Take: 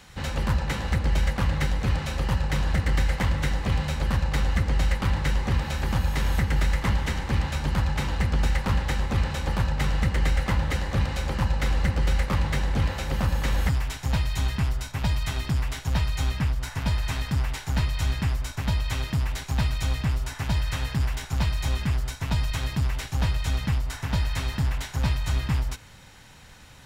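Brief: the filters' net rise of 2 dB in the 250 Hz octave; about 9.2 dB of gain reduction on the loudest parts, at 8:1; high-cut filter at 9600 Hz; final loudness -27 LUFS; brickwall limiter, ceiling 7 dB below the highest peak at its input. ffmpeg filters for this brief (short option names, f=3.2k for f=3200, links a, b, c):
-af "lowpass=9.6k,equalizer=f=250:t=o:g=3,acompressor=threshold=-28dB:ratio=8,volume=8.5dB,alimiter=limit=-17.5dB:level=0:latency=1"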